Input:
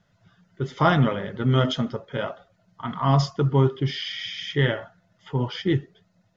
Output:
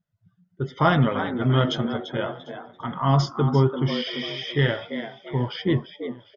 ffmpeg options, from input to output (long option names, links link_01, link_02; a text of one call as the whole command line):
ffmpeg -i in.wav -filter_complex "[0:a]asplit=2[link_01][link_02];[link_02]asplit=4[link_03][link_04][link_05][link_06];[link_03]adelay=341,afreqshift=110,volume=-10dB[link_07];[link_04]adelay=682,afreqshift=220,volume=-19.1dB[link_08];[link_05]adelay=1023,afreqshift=330,volume=-28.2dB[link_09];[link_06]adelay=1364,afreqshift=440,volume=-37.4dB[link_10];[link_07][link_08][link_09][link_10]amix=inputs=4:normalize=0[link_11];[link_01][link_11]amix=inputs=2:normalize=0,afftdn=noise_reduction=22:noise_floor=-46,asplit=2[link_12][link_13];[link_13]aecho=0:1:747|1494:0.0668|0.0221[link_14];[link_12][link_14]amix=inputs=2:normalize=0" out.wav